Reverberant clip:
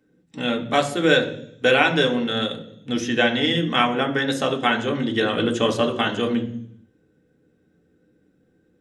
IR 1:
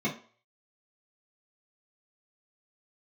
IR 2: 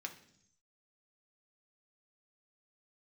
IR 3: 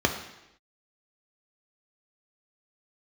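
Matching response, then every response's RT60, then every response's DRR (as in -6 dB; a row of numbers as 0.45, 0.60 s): 2; not exponential, 0.65 s, not exponential; -8.5, 2.5, 3.5 dB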